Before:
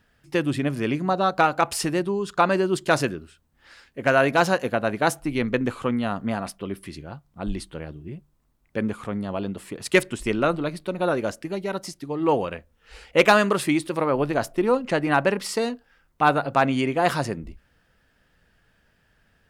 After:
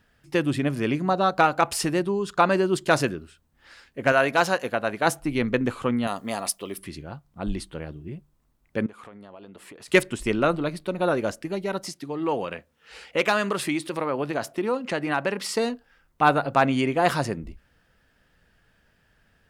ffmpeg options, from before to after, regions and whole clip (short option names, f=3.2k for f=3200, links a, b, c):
-filter_complex "[0:a]asettb=1/sr,asplit=3[a][b][c];[a]atrim=end=4.124[d];[b]atrim=start=4.12:end=5.06,asetpts=PTS-STARTPTS,afade=t=in:d=0.004:c=qsin,afade=t=out:st=0.936:d=0.004:c=qsin,deesser=0.2,lowshelf=f=370:g=-7.5[e];[c]atrim=start=5.056[f];[d][e]acrossfade=d=0.004:c1=hsin:c2=qsin[g];[g][f]acrossfade=d=0.004:c1=qsin:c2=hsin,asettb=1/sr,asplit=3[h][i][j];[h]atrim=end=6.074[k];[i]atrim=start=6.07:end=6.78,asetpts=PTS-STARTPTS,afade=t=in:d=0.004:c=qsin,afade=t=out:st=0.706:d=0.004:c=qsin,bass=f=250:g=-11,treble=f=4k:g=14,bandreject=f=1.5k:w=6.5[l];[j]atrim=start=6.776[m];[k][l]acrossfade=d=0.004:c1=hsin:c2=qsin[n];[n][m]acrossfade=d=0.004:c1=qsin:c2=hsin,asettb=1/sr,asplit=3[o][p][q];[o]atrim=end=8.864[r];[p]atrim=start=8.86:end=9.88,asetpts=PTS-STARTPTS,afade=t=in:d=0.004:c=qsin,afade=t=out:st=1.016:d=0.004:c=qsin,bass=f=250:g=-11,treble=f=4k:g=-4,acompressor=threshold=-41dB:ratio=6:attack=3.2:release=140:knee=1:detection=peak[s];[q]atrim=start=9.876[t];[r][s]acrossfade=d=0.004:c1=hsin:c2=qsin[u];[u][t]acrossfade=d=0.004:c1=qsin:c2=hsin,asettb=1/sr,asplit=3[v][w][x];[v]atrim=end=11.864[y];[w]atrim=start=11.86:end=15.56,asetpts=PTS-STARTPTS,afade=t=in:d=0.004:c=qsin,afade=t=out:st=3.696:d=0.004:c=qsin,highpass=120,equalizer=f=3.1k:w=0.39:g=3,acompressor=threshold=-30dB:ratio=1.5:attack=3.2:release=140:knee=1:detection=peak[z];[x]atrim=start=15.556[aa];[y][z]acrossfade=d=0.004:c1=hsin:c2=qsin[ab];[ab][aa]acrossfade=d=0.004:c1=qsin:c2=hsin"